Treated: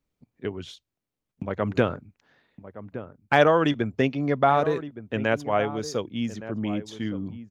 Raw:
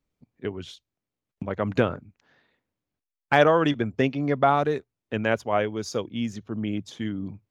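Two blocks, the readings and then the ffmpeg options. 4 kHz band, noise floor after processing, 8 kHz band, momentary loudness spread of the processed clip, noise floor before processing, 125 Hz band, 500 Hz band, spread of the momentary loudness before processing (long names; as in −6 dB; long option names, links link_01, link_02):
0.0 dB, below −85 dBFS, can't be measured, 19 LU, below −85 dBFS, 0.0 dB, 0.0 dB, 15 LU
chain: -filter_complex "[0:a]asplit=2[link_01][link_02];[link_02]adelay=1166,volume=-13dB,highshelf=frequency=4000:gain=-26.2[link_03];[link_01][link_03]amix=inputs=2:normalize=0"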